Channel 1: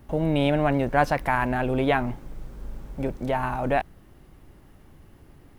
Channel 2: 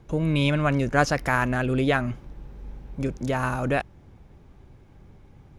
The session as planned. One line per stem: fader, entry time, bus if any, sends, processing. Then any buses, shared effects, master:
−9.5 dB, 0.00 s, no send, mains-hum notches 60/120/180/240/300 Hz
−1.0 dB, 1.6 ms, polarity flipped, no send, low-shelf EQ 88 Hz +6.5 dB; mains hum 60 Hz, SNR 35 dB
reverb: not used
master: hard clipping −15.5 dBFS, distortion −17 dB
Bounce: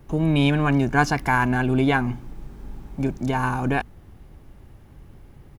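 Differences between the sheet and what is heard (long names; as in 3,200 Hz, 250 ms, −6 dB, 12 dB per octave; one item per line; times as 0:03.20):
stem 1 −9.5 dB → −1.5 dB
master: missing hard clipping −15.5 dBFS, distortion −17 dB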